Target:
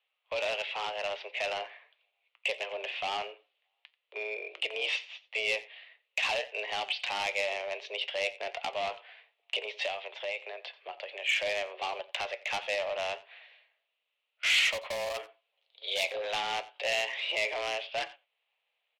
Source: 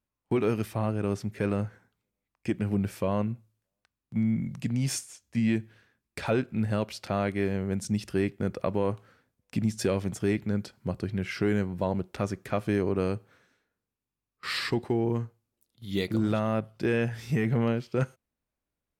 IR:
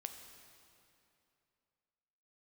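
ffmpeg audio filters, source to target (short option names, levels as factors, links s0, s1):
-filter_complex "[0:a]asplit=2[s0][s1];[s1]alimiter=level_in=1.26:limit=0.0631:level=0:latency=1:release=348,volume=0.794,volume=1.41[s2];[s0][s2]amix=inputs=2:normalize=0,asettb=1/sr,asplit=3[s3][s4][s5];[s3]atrim=end=9.864[s6];[s4]atrim=start=9.86:end=11.42,asetpts=PTS-STARTPTS,afade=t=in:d=0.004:c=qsin,afade=t=out:st=1.556:d=0.004:c=qsin,acompressor=threshold=0.0501:ratio=10[s7];[s5]atrim=start=11.416[s8];[s6][s7]acrossfade=d=0.004:c1=hsin:c2=qsin[s9];[s9][s8]acrossfade=d=0.004:c1=qsin:c2=hsin,tremolo=f=220:d=0.261,highpass=f=330:t=q:w=0.5412,highpass=f=330:t=q:w=1.307,lowpass=f=3100:t=q:w=0.5176,lowpass=f=3100:t=q:w=0.7071,lowpass=f=3100:t=q:w=1.932,afreqshift=200,asoftclip=type=tanh:threshold=0.0708,flanger=delay=5.8:depth=2.8:regen=77:speed=1.5:shape=sinusoidal,asplit=2[s10][s11];[s11]highpass=f=720:p=1,volume=3.98,asoftclip=type=tanh:threshold=0.0531[s12];[s10][s12]amix=inputs=2:normalize=0,lowpass=f=1300:p=1,volume=0.501,asettb=1/sr,asplit=3[s13][s14][s15];[s13]atrim=end=14.684[s16];[s14]atrim=start=14.68:end=16.04,asetpts=PTS-STARTPTS,afade=t=in:d=0.004:c=qsin,afade=t=out:st=1.356:d=0.004:c=qsin,asoftclip=type=hard:threshold=0.0266[s17];[s15]atrim=start=16.036[s18];[s16][s17]acrossfade=d=0.004:c1=hsin:c2=qsin[s19];[s19][s18]acrossfade=d=0.004:c1=qsin:c2=hsin,asplit=2[s20][s21];[s21]aecho=0:1:88:0.106[s22];[s20][s22]amix=inputs=2:normalize=0,aexciter=amount=8.5:drive=7.1:freq=2300" -ar 44100 -c:a libmp3lame -b:a 112k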